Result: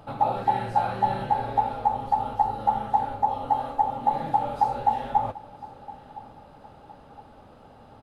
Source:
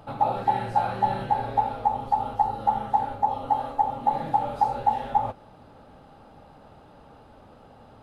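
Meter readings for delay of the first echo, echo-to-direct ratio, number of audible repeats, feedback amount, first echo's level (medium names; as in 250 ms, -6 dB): 1013 ms, -18.5 dB, 2, 38%, -19.0 dB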